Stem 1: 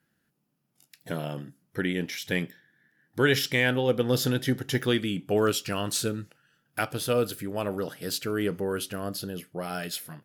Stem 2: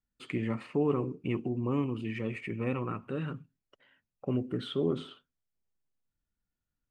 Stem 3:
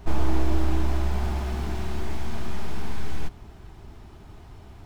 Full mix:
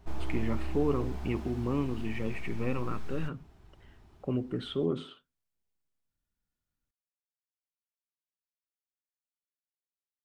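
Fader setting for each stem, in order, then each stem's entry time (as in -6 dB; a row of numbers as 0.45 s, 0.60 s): mute, -0.5 dB, -12.5 dB; mute, 0.00 s, 0.00 s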